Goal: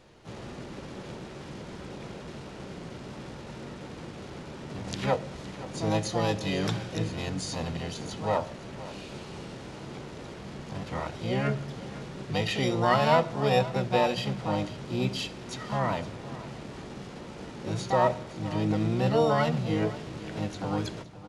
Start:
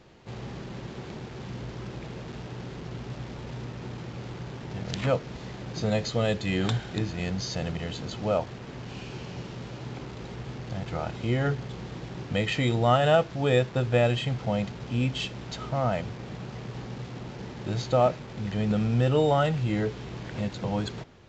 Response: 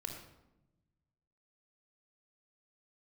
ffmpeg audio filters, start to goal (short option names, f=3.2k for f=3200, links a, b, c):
-filter_complex "[0:a]bandreject=f=60:t=h:w=6,bandreject=f=120:t=h:w=6,bandreject=f=180:t=h:w=6,asplit=2[a][b];[b]asetrate=66075,aresample=44100,atempo=0.66742,volume=-3dB[c];[a][c]amix=inputs=2:normalize=0,aecho=1:1:516:0.15,asplit=2[d][e];[1:a]atrim=start_sample=2205[f];[e][f]afir=irnorm=-1:irlink=0,volume=-9.5dB[g];[d][g]amix=inputs=2:normalize=0,volume=-4.5dB"